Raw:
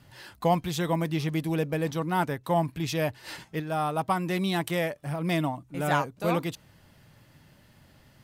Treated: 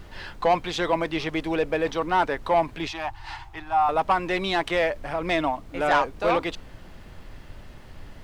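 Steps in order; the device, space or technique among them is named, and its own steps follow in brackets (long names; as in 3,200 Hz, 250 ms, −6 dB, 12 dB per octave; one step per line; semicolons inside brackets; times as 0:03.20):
aircraft cabin announcement (band-pass filter 410–3,900 Hz; soft clipping −21.5 dBFS, distortion −14 dB; brown noise bed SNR 15 dB)
0:02.88–0:03.89: drawn EQ curve 130 Hz 0 dB, 210 Hz −29 dB, 330 Hz −7 dB, 510 Hz −27 dB, 790 Hz +5 dB, 1,600 Hz −6 dB
level +8.5 dB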